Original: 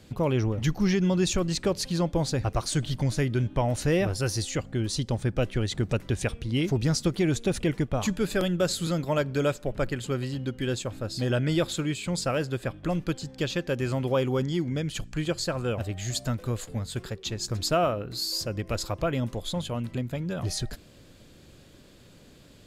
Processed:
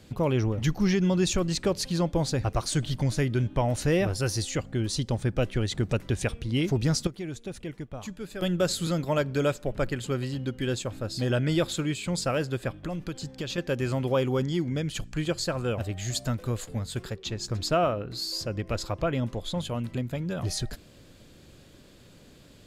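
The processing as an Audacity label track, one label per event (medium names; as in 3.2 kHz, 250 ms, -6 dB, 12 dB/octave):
7.070000	8.420000	gain -11 dB
12.730000	13.580000	compression, threshold -28 dBFS
17.160000	19.580000	treble shelf 7.9 kHz -9 dB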